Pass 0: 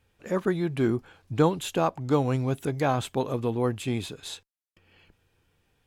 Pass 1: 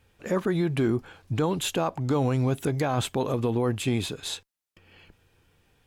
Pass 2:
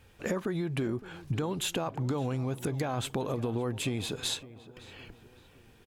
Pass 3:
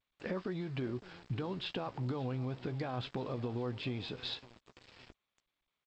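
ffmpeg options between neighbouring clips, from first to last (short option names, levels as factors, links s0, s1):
-af "alimiter=limit=0.0841:level=0:latency=1:release=48,volume=1.78"
-filter_complex "[0:a]acompressor=threshold=0.0224:ratio=10,asplit=2[s0][s1];[s1]adelay=562,lowpass=f=2500:p=1,volume=0.141,asplit=2[s2][s3];[s3]adelay=562,lowpass=f=2500:p=1,volume=0.5,asplit=2[s4][s5];[s5]adelay=562,lowpass=f=2500:p=1,volume=0.5,asplit=2[s6][s7];[s7]adelay=562,lowpass=f=2500:p=1,volume=0.5[s8];[s0][s2][s4][s6][s8]amix=inputs=5:normalize=0,volume=1.68"
-filter_complex "[0:a]aresample=11025,aeval=exprs='val(0)*gte(abs(val(0)),0.00596)':c=same,aresample=44100,asplit=2[s0][s1];[s1]adelay=16,volume=0.224[s2];[s0][s2]amix=inputs=2:normalize=0,volume=0.473" -ar 16000 -c:a g722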